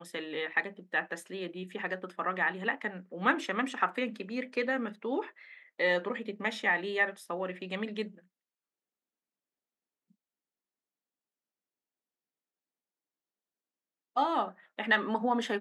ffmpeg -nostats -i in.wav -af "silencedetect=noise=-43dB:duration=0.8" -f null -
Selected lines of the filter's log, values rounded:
silence_start: 8.08
silence_end: 14.16 | silence_duration: 6.08